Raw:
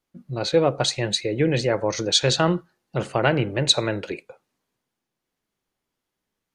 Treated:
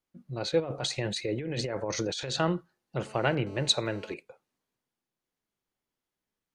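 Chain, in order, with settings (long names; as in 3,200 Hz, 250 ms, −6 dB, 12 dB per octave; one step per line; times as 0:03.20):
0:00.60–0:02.39: compressor whose output falls as the input rises −25 dBFS, ratio −1
0:03.07–0:04.14: phone interference −45 dBFS
level −7 dB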